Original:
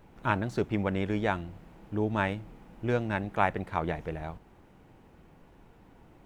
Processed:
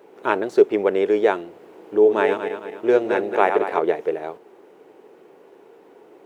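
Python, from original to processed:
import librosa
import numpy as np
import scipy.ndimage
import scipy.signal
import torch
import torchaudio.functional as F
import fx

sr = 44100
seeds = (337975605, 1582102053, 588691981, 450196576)

y = fx.reverse_delay_fb(x, sr, ms=110, feedback_pct=65, wet_db=-7.0, at=(1.5, 3.79))
y = fx.highpass_res(y, sr, hz=410.0, q=4.9)
y = y * 10.0 ** (5.0 / 20.0)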